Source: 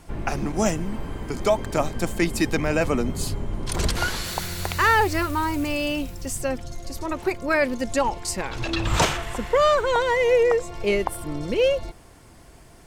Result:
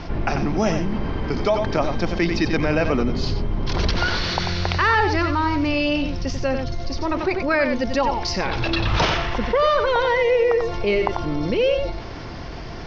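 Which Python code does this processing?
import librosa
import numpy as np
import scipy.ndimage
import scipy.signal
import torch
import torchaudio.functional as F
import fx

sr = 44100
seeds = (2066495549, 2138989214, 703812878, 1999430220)

y = scipy.signal.sosfilt(scipy.signal.butter(12, 5700.0, 'lowpass', fs=sr, output='sos'), x)
y = y + 10.0 ** (-9.0 / 20.0) * np.pad(y, (int(92 * sr / 1000.0), 0))[:len(y)]
y = fx.env_flatten(y, sr, amount_pct=50)
y = y * librosa.db_to_amplitude(-1.0)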